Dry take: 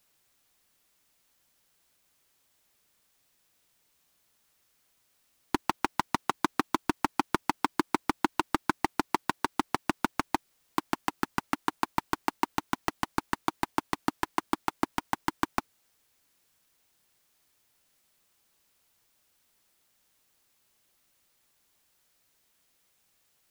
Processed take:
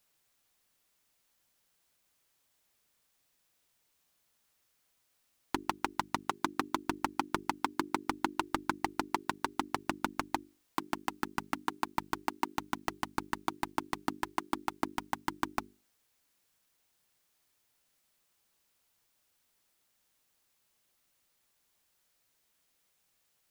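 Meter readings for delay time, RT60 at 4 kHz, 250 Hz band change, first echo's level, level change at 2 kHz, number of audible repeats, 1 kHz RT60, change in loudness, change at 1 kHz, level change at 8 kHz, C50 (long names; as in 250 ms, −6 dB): no echo audible, no reverb audible, −5.5 dB, no echo audible, −4.5 dB, no echo audible, no reverb audible, −4.5 dB, −4.5 dB, −4.5 dB, no reverb audible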